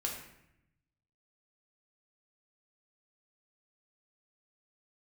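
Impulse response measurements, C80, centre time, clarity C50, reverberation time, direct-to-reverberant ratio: 7.0 dB, 36 ms, 4.5 dB, 0.80 s, -1.0 dB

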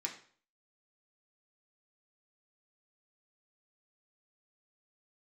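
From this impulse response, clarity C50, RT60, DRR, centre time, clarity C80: 9.5 dB, 0.50 s, -1.0 dB, 17 ms, 13.0 dB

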